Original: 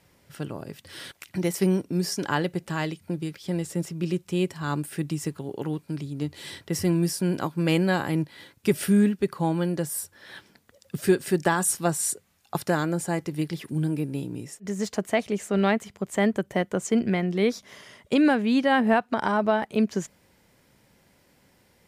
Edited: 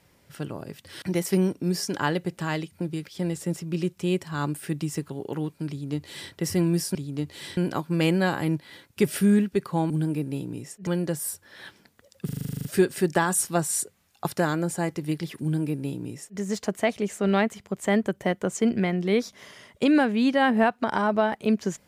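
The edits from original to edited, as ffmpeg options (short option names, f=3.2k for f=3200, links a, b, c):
-filter_complex "[0:a]asplit=16[a][b][c][d][e][f][g][h][i][j][k][l][m][n][o][p];[a]atrim=end=1.022[q];[b]atrim=start=1.308:end=7.242[r];[c]atrim=start=5.978:end=6.602[s];[d]atrim=start=7.238:end=9.572[t];[e]atrim=start=13.718:end=14.692[u];[f]atrim=start=9.568:end=10.992[v];[g]atrim=start=10.948:end=10.992[w];[h]atrim=start=10.948:end=10.992[x];[i]atrim=start=10.948:end=10.992[y];[j]atrim=start=10.948:end=10.992[z];[k]atrim=start=10.948:end=10.992[aa];[l]atrim=start=10.948:end=10.992[ab];[m]atrim=start=10.948:end=10.992[ac];[n]atrim=start=10.948:end=10.992[ad];[o]atrim=start=10.948:end=10.992[ae];[p]atrim=start=10.948[af];[q][r]acrossfade=d=0.004:c1=hsin:c2=hsin[ag];[ag][s]acrossfade=d=0.004:c1=hsin:c2=hsin[ah];[ah][t]acrossfade=d=0.004:c1=hsin:c2=hsin[ai];[ai][u]acrossfade=d=0.004:c1=hsin:c2=hsin[aj];[aj][v]acrossfade=d=0.004:c1=hsin:c2=hsin[ak];[ak][w]acrossfade=d=0.004:c1=hsin:c2=hsin[al];[al][x]acrossfade=d=0.004:c1=hsin:c2=hsin[am];[am][y]acrossfade=d=0.004:c1=hsin:c2=hsin[an];[an][z]acrossfade=d=0.004:c1=hsin:c2=hsin[ao];[ao][aa]acrossfade=d=0.004:c1=hsin:c2=hsin[ap];[ap][ab]acrossfade=d=0.004:c1=hsin:c2=hsin[aq];[aq][ac]acrossfade=d=0.004:c1=hsin:c2=hsin[ar];[ar][ad]acrossfade=d=0.004:c1=hsin:c2=hsin[as];[as][ae]acrossfade=d=0.004:c1=hsin:c2=hsin[at];[at][af]acrossfade=d=0.004:c1=hsin:c2=hsin"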